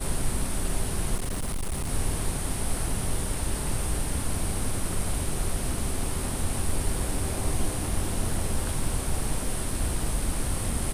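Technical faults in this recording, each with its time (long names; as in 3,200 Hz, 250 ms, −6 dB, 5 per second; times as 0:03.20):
0:01.15–0:01.91: clipping −25.5 dBFS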